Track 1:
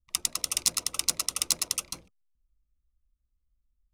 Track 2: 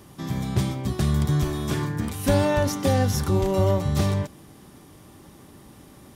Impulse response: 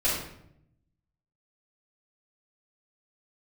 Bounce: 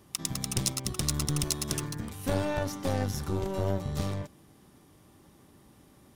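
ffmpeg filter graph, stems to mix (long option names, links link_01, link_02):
-filter_complex "[0:a]acrusher=bits=5:mix=0:aa=0.5,volume=-5dB[link_01];[1:a]aeval=exprs='(tanh(5.01*val(0)+0.8)-tanh(0.8))/5.01':channel_layout=same,volume=-4.5dB[link_02];[link_01][link_02]amix=inputs=2:normalize=0"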